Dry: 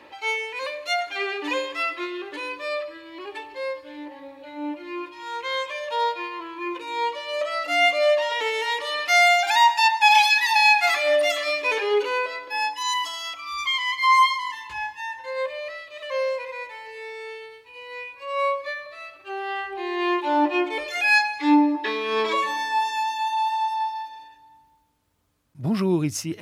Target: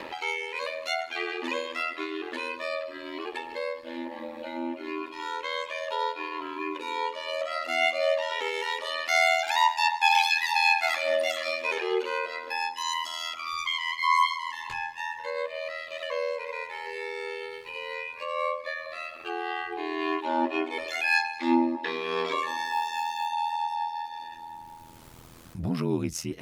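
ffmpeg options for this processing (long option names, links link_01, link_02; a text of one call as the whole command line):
ffmpeg -i in.wav -filter_complex "[0:a]asettb=1/sr,asplit=3[link_01][link_02][link_03];[link_01]atrim=end=22.644[link_04];[link_02]atrim=start=22.64:end=23.27,asetpts=PTS-STARTPTS,afade=type=in:duration=0.004:curve=qsin,afade=type=out:start_time=0.626:duration=0.004:curve=qsin,acrusher=bits=7:mode=log:mix=0:aa=0.000001[link_05];[link_03]atrim=start=23.266[link_06];[link_04][link_05]acrossfade=duration=0.004:curve1=hsin:curve2=qsin[link_07];[link_07][link_06]acrossfade=duration=0.004:curve1=qsin:curve2=hsin,acompressor=mode=upward:threshold=-21dB:ratio=2.5,aeval=exprs='val(0)*sin(2*PI*41*n/s)':channel_layout=same,volume=-3dB" out.wav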